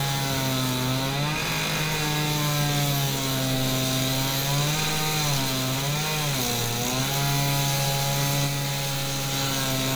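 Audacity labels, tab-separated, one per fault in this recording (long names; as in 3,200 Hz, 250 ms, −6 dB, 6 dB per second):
5.430000	6.410000	clipping −21.5 dBFS
8.460000	9.340000	clipping −24 dBFS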